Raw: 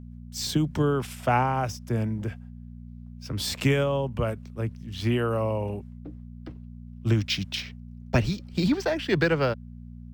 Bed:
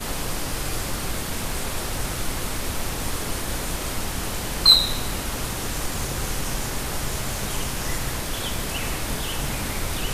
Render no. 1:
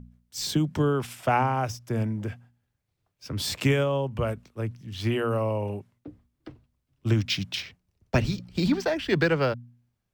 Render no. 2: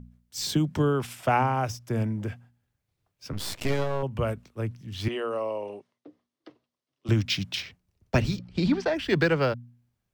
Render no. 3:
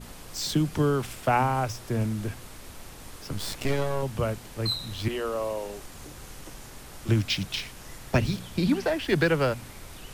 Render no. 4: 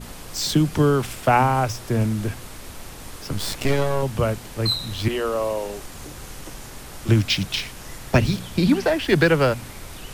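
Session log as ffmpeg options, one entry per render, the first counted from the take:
-af "bandreject=f=60:t=h:w=4,bandreject=f=120:t=h:w=4,bandreject=f=180:t=h:w=4,bandreject=f=240:t=h:w=4"
-filter_complex "[0:a]asettb=1/sr,asplit=3[a][b][c];[a]atrim=end=3.334[d];[b]atrim=start=3.33:end=4.03,asetpts=PTS-STARTPTS,afade=t=in:d=0.004:c=qsin,afade=t=out:st=0.696:d=0.004:c=qsin,aeval=exprs='max(val(0),0)':c=same[e];[c]atrim=start=4.026[f];[d][e]acrossfade=d=0.004:c1=hsin:c2=qsin[g];[g][f]acrossfade=d=0.004:c1=qsin:c2=hsin,asettb=1/sr,asplit=3[h][i][j];[h]atrim=end=5.084[k];[i]atrim=start=5.08:end=7.09,asetpts=PTS-STARTPTS,afade=t=in:d=0.004:c=qsin,afade=t=out:st=2.006:d=0.004:c=qsin,highpass=410,equalizer=f=840:t=q:w=4:g=-4,equalizer=f=1.5k:t=q:w=4:g=-6,equalizer=f=2.4k:t=q:w=4:g=-5,equalizer=f=7.5k:t=q:w=4:g=-8,lowpass=f=8.5k:w=0.5412,lowpass=f=8.5k:w=1.3066[l];[j]atrim=start=7.086[m];[k][l]acrossfade=d=0.004:c1=hsin:c2=qsin[n];[n][m]acrossfade=d=0.004:c1=qsin:c2=hsin,asplit=3[o][p][q];[o]afade=t=out:st=8.38:d=0.02[r];[p]adynamicsmooth=sensitivity=1:basefreq=5.7k,afade=t=in:st=8.38:d=0.02,afade=t=out:st=8.93:d=0.02[s];[q]afade=t=in:st=8.93:d=0.02[t];[r][s][t]amix=inputs=3:normalize=0"
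-filter_complex "[1:a]volume=-16.5dB[a];[0:a][a]amix=inputs=2:normalize=0"
-af "volume=6dB"

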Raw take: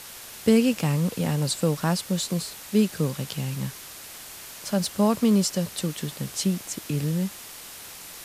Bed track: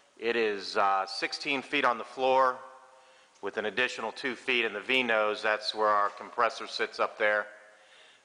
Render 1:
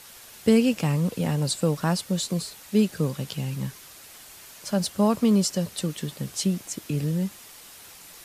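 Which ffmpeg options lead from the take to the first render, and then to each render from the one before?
-af "afftdn=nr=6:nf=-42"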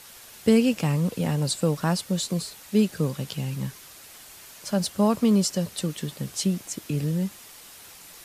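-af anull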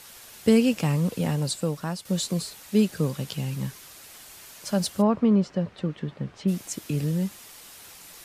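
-filter_complex "[0:a]asplit=3[a][b][c];[a]afade=t=out:st=5.01:d=0.02[d];[b]lowpass=1.9k,afade=t=in:st=5.01:d=0.02,afade=t=out:st=6.47:d=0.02[e];[c]afade=t=in:st=6.47:d=0.02[f];[d][e][f]amix=inputs=3:normalize=0,asplit=2[g][h];[g]atrim=end=2.05,asetpts=PTS-STARTPTS,afade=t=out:st=1.24:d=0.81:silence=0.334965[i];[h]atrim=start=2.05,asetpts=PTS-STARTPTS,afade=t=in:d=0.004:c=hsin:silence=0.334965[j];[i][j]concat=n=2:v=0:a=1"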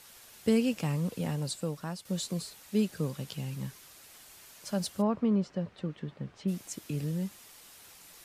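-af "volume=-7dB"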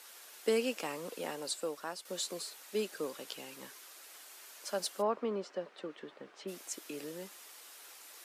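-af "highpass=f=330:w=0.5412,highpass=f=330:w=1.3066,equalizer=f=1.4k:t=o:w=0.77:g=2.5"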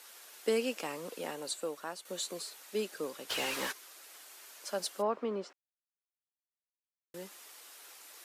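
-filter_complex "[0:a]asettb=1/sr,asplit=3[a][b][c];[a]atrim=end=1.314[d];[b]atrim=start=1.31:end=2.35,asetpts=PTS-STARTPTS,afade=t=in:d=0.004:c=qsin,afade=t=out:st=1.036:d=0.004:c=qsin,bandreject=f=5.1k:w=9.1[e];[c]atrim=start=2.346[f];[d][e]acrossfade=d=0.004:c1=hsin:c2=qsin[g];[g][f]acrossfade=d=0.004:c1=qsin:c2=hsin,asplit=3[h][i][j];[h]afade=t=out:st=3.29:d=0.02[k];[i]asplit=2[l][m];[m]highpass=f=720:p=1,volume=27dB,asoftclip=type=tanh:threshold=-22dB[n];[l][n]amix=inputs=2:normalize=0,lowpass=f=3.7k:p=1,volume=-6dB,afade=t=in:st=3.29:d=0.02,afade=t=out:st=3.71:d=0.02[o];[j]afade=t=in:st=3.71:d=0.02[p];[k][o][p]amix=inputs=3:normalize=0,asplit=3[q][r][s];[q]atrim=end=5.53,asetpts=PTS-STARTPTS,afade=t=out:st=5.526:d=0.004:c=hsin[t];[r]atrim=start=5.53:end=7.14,asetpts=PTS-STARTPTS,volume=0[u];[s]atrim=start=7.14,asetpts=PTS-STARTPTS,afade=t=in:d=0.004:c=hsin[v];[t][u][v]concat=n=3:v=0:a=1"

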